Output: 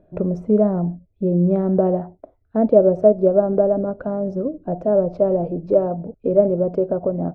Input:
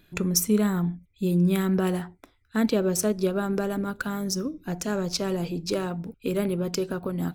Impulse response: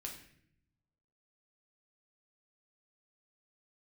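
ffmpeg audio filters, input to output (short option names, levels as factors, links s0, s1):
-af "lowpass=f=620:t=q:w=6.4,volume=1.41"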